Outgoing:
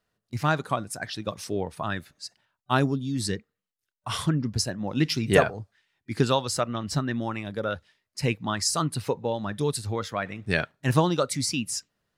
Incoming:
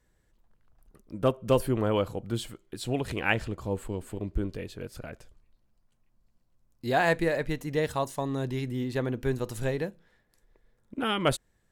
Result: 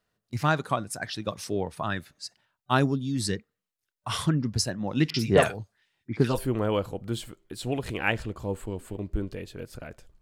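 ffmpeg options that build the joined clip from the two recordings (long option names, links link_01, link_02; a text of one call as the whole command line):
ffmpeg -i cue0.wav -i cue1.wav -filter_complex "[0:a]asettb=1/sr,asplit=3[link_01][link_02][link_03];[link_01]atrim=end=5.104[link_04];[link_02]atrim=start=5.1:end=6.38,asetpts=PTS-STARTPTS,afade=type=in:duration=0.004:curve=qsin,afade=type=out:start_time=1.276:duration=0.004:curve=qsin,acrossover=split=1600|6000[link_05][link_06][link_07];[link_06]adelay=40[link_08];[link_07]adelay=90[link_09];[link_05][link_08][link_09]amix=inputs=3:normalize=0,atrim=end_sample=56448[link_10];[link_03]atrim=start=6.376[link_11];[link_04][link_10]acrossfade=duration=0.004:curve1=hsin:curve2=qsin[link_12];[link_12][link_11]acrossfade=duration=0.004:curve1=qsin:curve2=hsin,apad=whole_dur=10.21,atrim=end=10.21,atrim=end=6.38,asetpts=PTS-STARTPTS[link_13];[1:a]atrim=start=1.5:end=5.43,asetpts=PTS-STARTPTS[link_14];[link_13][link_14]acrossfade=duration=0.1:curve1=tri:curve2=tri" out.wav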